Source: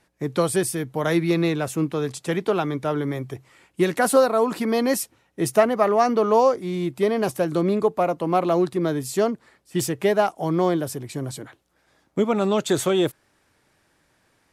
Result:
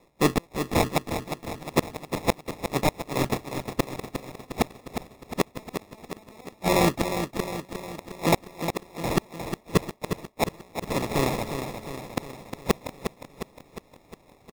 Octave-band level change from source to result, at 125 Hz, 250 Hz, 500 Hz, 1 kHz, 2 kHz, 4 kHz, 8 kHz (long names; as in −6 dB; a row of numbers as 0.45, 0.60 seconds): −2.5, −6.0, −9.0, −5.5, −2.5, −0.5, −5.0 decibels